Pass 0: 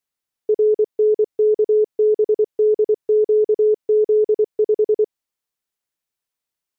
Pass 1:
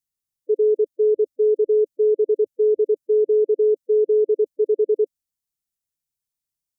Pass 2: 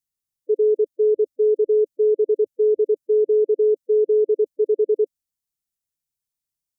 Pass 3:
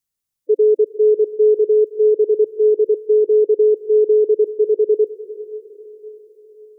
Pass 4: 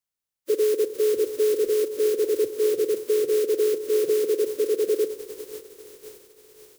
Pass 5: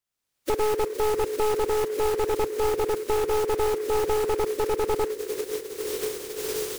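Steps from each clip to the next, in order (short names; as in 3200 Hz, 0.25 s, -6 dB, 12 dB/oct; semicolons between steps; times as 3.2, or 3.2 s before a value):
gate -20 dBFS, range -8 dB; spectral gate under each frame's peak -20 dB strong; tone controls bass +14 dB, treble +11 dB; gain -3.5 dB
nothing audible
diffused feedback echo 0.455 s, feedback 51%, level -15 dB; gain +4.5 dB
spectral contrast lowered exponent 0.4; on a send at -11.5 dB: band-pass 460 Hz, Q 0.94 + reverb RT60 0.95 s, pre-delay 3 ms; on the sum: gain -7 dB
one-sided fold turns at -22.5 dBFS; recorder AGC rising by 30 dB/s; noise-modulated delay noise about 1400 Hz, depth 0.033 ms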